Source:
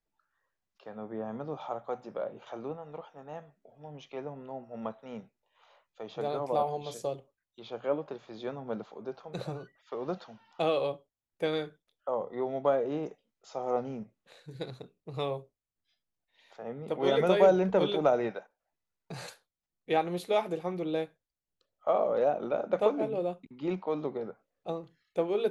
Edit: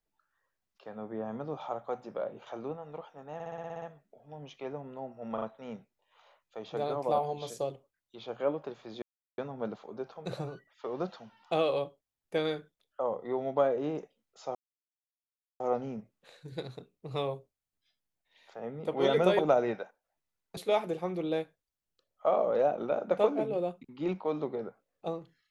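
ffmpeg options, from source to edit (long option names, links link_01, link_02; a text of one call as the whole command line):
ffmpeg -i in.wav -filter_complex "[0:a]asplit=15[link_01][link_02][link_03][link_04][link_05][link_06][link_07][link_08][link_09][link_10][link_11][link_12][link_13][link_14][link_15];[link_01]atrim=end=3.402[link_16];[link_02]atrim=start=3.338:end=3.402[link_17];[link_03]atrim=start=3.338:end=3.402[link_18];[link_04]atrim=start=3.338:end=3.402[link_19];[link_05]atrim=start=3.338:end=3.402[link_20];[link_06]atrim=start=3.338:end=3.402[link_21];[link_07]atrim=start=3.338:end=3.402[link_22];[link_08]atrim=start=3.338:end=3.402[link_23];[link_09]atrim=start=3.338:end=4.902[link_24];[link_10]atrim=start=4.858:end=4.902[link_25];[link_11]atrim=start=4.858:end=8.46,asetpts=PTS-STARTPTS,afade=type=out:start_time=3.598:duration=0.004:curve=hsin,apad=pad_dur=0.36[link_26];[link_12]atrim=start=8.46:end=13.63,asetpts=PTS-STARTPTS,afade=type=in:duration=0.004:curve=hsin,afade=type=out:start_time=5.166:duration=0.004:curve=hsin,apad=pad_dur=1.05[link_27];[link_13]atrim=start=13.63:end=17.422,asetpts=PTS-STARTPTS,afade=type=in:duration=0.004:curve=hsin[link_28];[link_14]atrim=start=17.948:end=19.132[link_29];[link_15]atrim=start=20.188[link_30];[link_16][link_17]acrossfade=duration=0.004:curve1=hsin:curve2=hsin[link_31];[link_31][link_18]acrossfade=duration=0.004:curve1=hsin:curve2=hsin[link_32];[link_32][link_19]acrossfade=duration=0.004:curve1=hsin:curve2=hsin[link_33];[link_33][link_20]acrossfade=duration=0.004:curve1=hsin:curve2=hsin[link_34];[link_34][link_21]acrossfade=duration=0.004:curve1=hsin:curve2=hsin[link_35];[link_35][link_22]acrossfade=duration=0.004:curve1=hsin:curve2=hsin[link_36];[link_36][link_23]acrossfade=duration=0.004:curve1=hsin:curve2=hsin[link_37];[link_37][link_24]acrossfade=duration=0.004:curve1=hsin:curve2=hsin[link_38];[link_38][link_25]acrossfade=duration=0.004:curve1=hsin:curve2=hsin[link_39];[link_26][link_27][link_28]concat=n=3:v=0:a=1[link_40];[link_39][link_40]acrossfade=duration=0.004:curve1=hsin:curve2=hsin[link_41];[link_41][link_29]acrossfade=duration=0.004:curve1=hsin:curve2=hsin[link_42];[link_42][link_30]acrossfade=duration=0.004:curve1=hsin:curve2=hsin" out.wav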